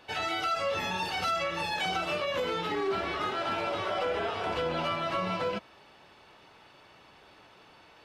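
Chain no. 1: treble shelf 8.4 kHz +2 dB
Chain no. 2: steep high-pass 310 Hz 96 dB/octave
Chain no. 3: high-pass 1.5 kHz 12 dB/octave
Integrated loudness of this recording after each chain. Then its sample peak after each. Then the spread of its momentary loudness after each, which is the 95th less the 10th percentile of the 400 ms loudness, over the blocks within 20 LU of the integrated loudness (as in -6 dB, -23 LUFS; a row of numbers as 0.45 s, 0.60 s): -30.5 LUFS, -31.0 LUFS, -35.0 LUFS; -19.5 dBFS, -19.0 dBFS, -22.5 dBFS; 2 LU, 2 LU, 5 LU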